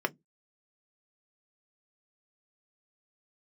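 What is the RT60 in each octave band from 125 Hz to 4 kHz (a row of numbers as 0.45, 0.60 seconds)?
0.25, 0.25, 0.15, 0.10, 0.10, 0.10 seconds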